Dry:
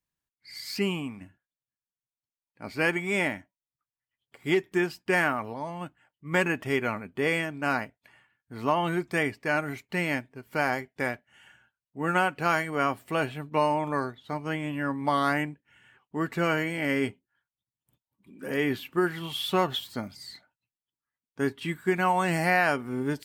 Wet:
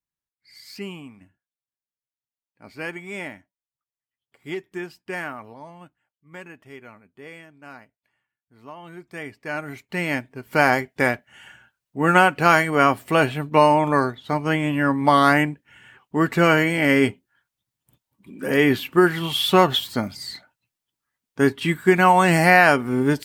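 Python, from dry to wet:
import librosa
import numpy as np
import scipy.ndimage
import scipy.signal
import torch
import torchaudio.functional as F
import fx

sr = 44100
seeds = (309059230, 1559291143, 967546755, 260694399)

y = fx.gain(x, sr, db=fx.line((5.66, -6.0), (6.3, -15.0), (8.79, -15.0), (9.48, -3.0), (10.6, 9.5)))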